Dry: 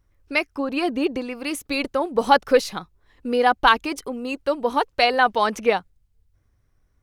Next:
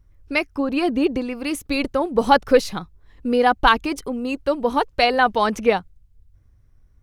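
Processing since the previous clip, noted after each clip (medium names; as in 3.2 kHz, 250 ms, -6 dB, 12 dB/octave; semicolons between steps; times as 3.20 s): bass shelf 210 Hz +11 dB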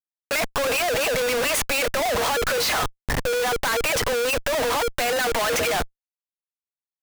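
rippled Chebyshev high-pass 460 Hz, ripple 6 dB; overdrive pedal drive 37 dB, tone 2.5 kHz, clips at -5.5 dBFS; Schmitt trigger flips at -30 dBFS; trim -6 dB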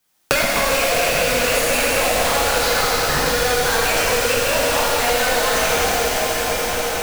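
on a send: feedback echo behind a high-pass 83 ms, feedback 76%, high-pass 4.1 kHz, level -5 dB; on the sum: plate-style reverb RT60 3.9 s, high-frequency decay 0.9×, DRR -8.5 dB; three bands compressed up and down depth 100%; trim -4.5 dB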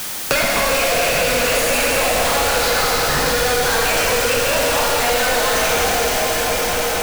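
jump at every zero crossing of -18.5 dBFS; trim -2 dB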